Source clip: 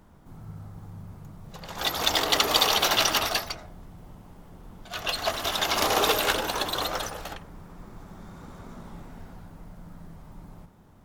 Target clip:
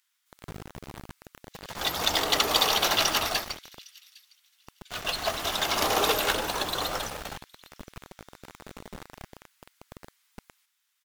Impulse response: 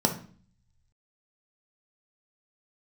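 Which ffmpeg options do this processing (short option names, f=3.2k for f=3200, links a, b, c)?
-filter_complex "[0:a]acrossover=split=2100[a][b];[a]acrusher=bits=5:mix=0:aa=0.000001[c];[b]aecho=1:1:808|1616:0.0708|0.0106[d];[c][d]amix=inputs=2:normalize=0,volume=-1.5dB"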